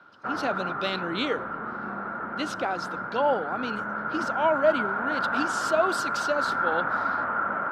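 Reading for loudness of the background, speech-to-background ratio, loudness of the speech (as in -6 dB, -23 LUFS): -29.0 LUFS, -0.5 dB, -29.5 LUFS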